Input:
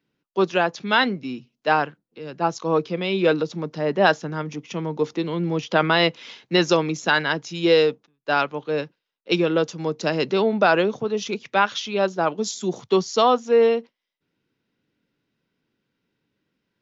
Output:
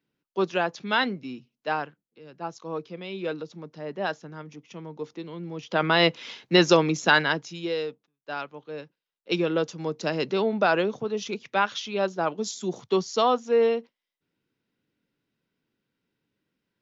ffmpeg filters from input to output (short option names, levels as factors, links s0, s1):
-af "volume=5.96,afade=t=out:st=1.05:d=1.17:silence=0.446684,afade=t=in:st=5.56:d=0.6:silence=0.237137,afade=t=out:st=7.15:d=0.54:silence=0.223872,afade=t=in:st=8.82:d=0.59:silence=0.398107"